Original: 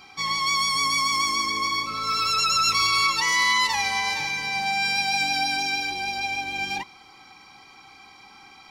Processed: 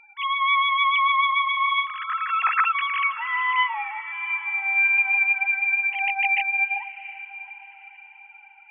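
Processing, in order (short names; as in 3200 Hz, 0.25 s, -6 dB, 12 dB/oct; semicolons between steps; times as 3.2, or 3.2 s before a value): sine-wave speech; 4–5.94 band shelf 850 Hz -13.5 dB 1.1 oct; on a send: diffused feedback echo 0.721 s, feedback 41%, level -15 dB; on the sum: gain +1.5 dB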